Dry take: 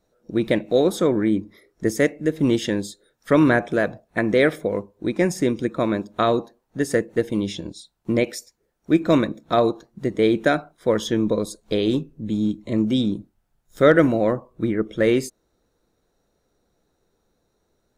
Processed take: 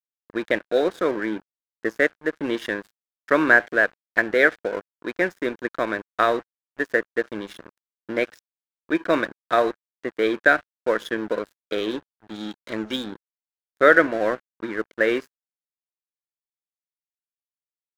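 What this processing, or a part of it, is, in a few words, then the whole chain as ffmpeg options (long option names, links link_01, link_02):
pocket radio on a weak battery: -filter_complex "[0:a]asettb=1/sr,asplit=3[link_01][link_02][link_03];[link_01]atrim=end=12.344[link_04];[link_02]atrim=start=12.34:end=12.96,asetpts=PTS-STARTPTS,afade=type=in:duration=0.004:curve=qsin,afade=type=out:start_time=0.616:duration=0.004:curve=qsin,equalizer=frequency=5600:width_type=o:width=2.3:gain=11[link_05];[link_03]atrim=start=12.956[link_06];[link_04][link_05]acrossfade=duration=0.004:curve1=hsin:curve2=qsin[link_07];[link_07][link_06]acrossfade=duration=0.004:curve1=qsin:curve2=hsin,highpass=380,lowpass=3900,aeval=exprs='sgn(val(0))*max(abs(val(0))-0.015,0)':channel_layout=same,equalizer=frequency=1600:width_type=o:width=0.51:gain=10.5"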